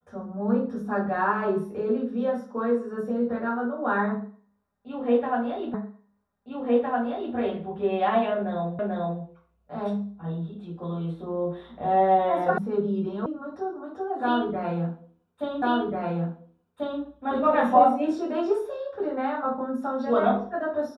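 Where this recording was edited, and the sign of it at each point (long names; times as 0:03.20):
0:05.74: the same again, the last 1.61 s
0:08.79: the same again, the last 0.44 s
0:12.58: cut off before it has died away
0:13.26: cut off before it has died away
0:15.62: the same again, the last 1.39 s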